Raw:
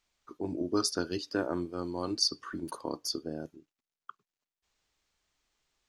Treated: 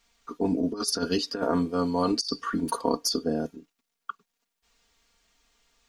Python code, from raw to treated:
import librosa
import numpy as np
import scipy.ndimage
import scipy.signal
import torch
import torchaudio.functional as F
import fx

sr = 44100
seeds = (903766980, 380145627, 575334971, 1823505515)

y = x + 0.88 * np.pad(x, (int(4.3 * sr / 1000.0), 0))[:len(x)]
y = fx.over_compress(y, sr, threshold_db=-31.0, ratio=-0.5)
y = y * 10.0 ** (6.5 / 20.0)